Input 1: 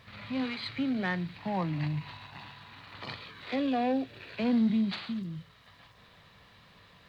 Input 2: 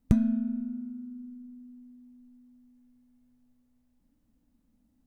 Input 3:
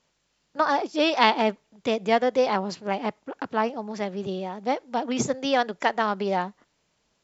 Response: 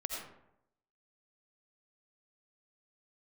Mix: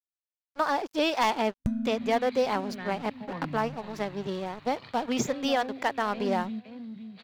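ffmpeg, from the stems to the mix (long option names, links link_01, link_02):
-filter_complex "[0:a]adelay=1750,volume=-6dB,asplit=2[link_01][link_02];[link_02]volume=-9.5dB[link_03];[1:a]agate=range=-33dB:threshold=-55dB:ratio=3:detection=peak,adelay=1550,volume=-2.5dB[link_04];[2:a]aeval=exprs='sgn(val(0))*max(abs(val(0))-0.01,0)':channel_layout=same,volume=0.5dB,asplit=2[link_05][link_06];[link_06]apad=whole_len=389706[link_07];[link_01][link_07]sidechaingate=range=-33dB:threshold=-46dB:ratio=16:detection=peak[link_08];[link_03]aecho=0:1:514|1028|1542|2056:1|0.24|0.0576|0.0138[link_09];[link_08][link_04][link_05][link_09]amix=inputs=4:normalize=0,asoftclip=type=hard:threshold=-11.5dB,alimiter=limit=-15.5dB:level=0:latency=1:release=474"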